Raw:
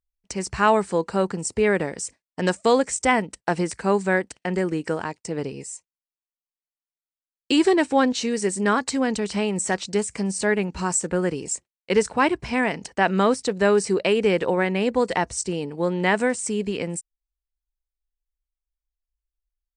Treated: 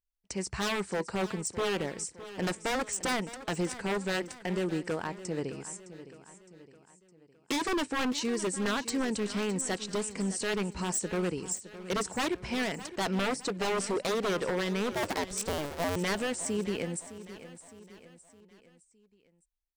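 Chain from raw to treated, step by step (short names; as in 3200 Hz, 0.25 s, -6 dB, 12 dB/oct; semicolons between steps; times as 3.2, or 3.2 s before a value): 14.92–15.96 cycle switcher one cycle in 2, inverted; wavefolder -18.5 dBFS; feedback echo 0.612 s, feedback 48%, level -14.5 dB; gain -6 dB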